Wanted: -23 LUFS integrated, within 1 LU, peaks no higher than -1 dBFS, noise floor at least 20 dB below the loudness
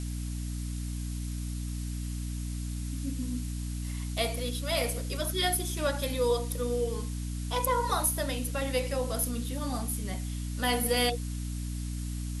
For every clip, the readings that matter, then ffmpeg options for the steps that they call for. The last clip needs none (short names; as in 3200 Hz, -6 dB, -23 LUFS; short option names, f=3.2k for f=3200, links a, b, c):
hum 60 Hz; harmonics up to 300 Hz; hum level -32 dBFS; noise floor -35 dBFS; noise floor target -52 dBFS; loudness -31.5 LUFS; peak -13.0 dBFS; loudness target -23.0 LUFS
-> -af "bandreject=f=60:t=h:w=4,bandreject=f=120:t=h:w=4,bandreject=f=180:t=h:w=4,bandreject=f=240:t=h:w=4,bandreject=f=300:t=h:w=4"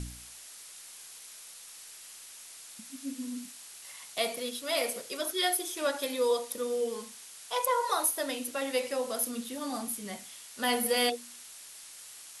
hum none; noise floor -49 dBFS; noise floor target -52 dBFS
-> -af "afftdn=nr=6:nf=-49"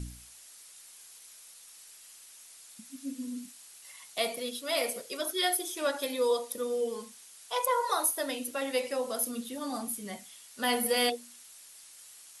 noise floor -53 dBFS; loudness -31.5 LUFS; peak -13.5 dBFS; loudness target -23.0 LUFS
-> -af "volume=8.5dB"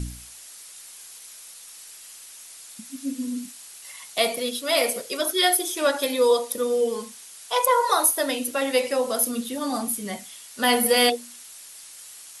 loudness -23.0 LUFS; peak -5.0 dBFS; noise floor -44 dBFS